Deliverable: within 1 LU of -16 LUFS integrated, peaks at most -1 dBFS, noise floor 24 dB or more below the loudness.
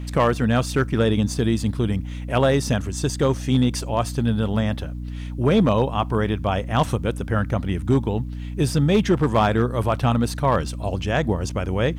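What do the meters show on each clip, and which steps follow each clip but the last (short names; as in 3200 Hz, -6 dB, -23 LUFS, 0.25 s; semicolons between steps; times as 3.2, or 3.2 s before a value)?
clipped 0.4%; flat tops at -10.5 dBFS; hum 60 Hz; harmonics up to 300 Hz; hum level -28 dBFS; loudness -22.0 LUFS; peak -10.5 dBFS; loudness target -16.0 LUFS
-> clip repair -10.5 dBFS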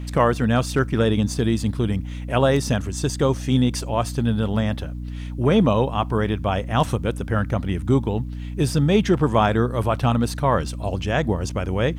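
clipped 0.0%; hum 60 Hz; harmonics up to 300 Hz; hum level -28 dBFS
-> de-hum 60 Hz, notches 5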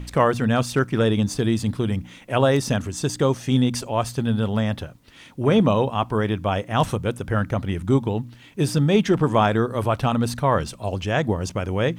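hum none; loudness -22.0 LUFS; peak -5.0 dBFS; loudness target -16.0 LUFS
-> gain +6 dB; limiter -1 dBFS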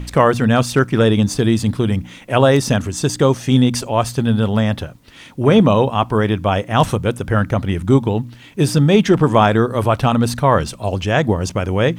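loudness -16.5 LUFS; peak -1.0 dBFS; noise floor -41 dBFS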